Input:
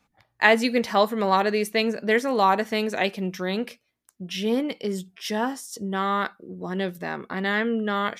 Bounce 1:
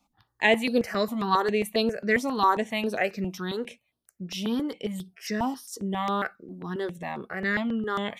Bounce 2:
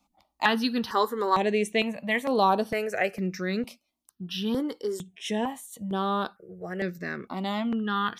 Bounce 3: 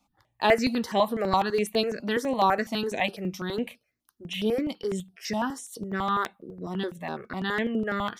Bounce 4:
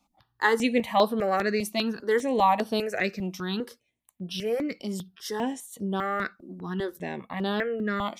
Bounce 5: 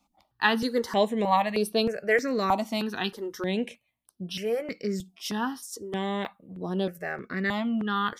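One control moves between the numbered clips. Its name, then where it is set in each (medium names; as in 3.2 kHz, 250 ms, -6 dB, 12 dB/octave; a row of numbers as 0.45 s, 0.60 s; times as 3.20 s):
stepped phaser, rate: 7.4 Hz, 2.2 Hz, 12 Hz, 5 Hz, 3.2 Hz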